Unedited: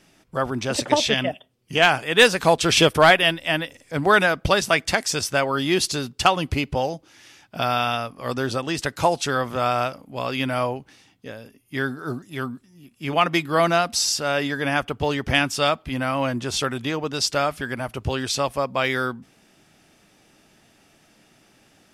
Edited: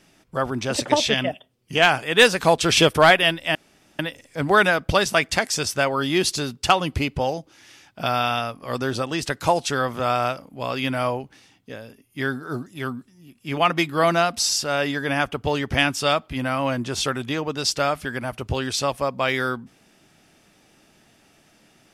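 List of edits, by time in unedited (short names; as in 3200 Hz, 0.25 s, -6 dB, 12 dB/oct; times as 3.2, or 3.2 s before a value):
3.55 insert room tone 0.44 s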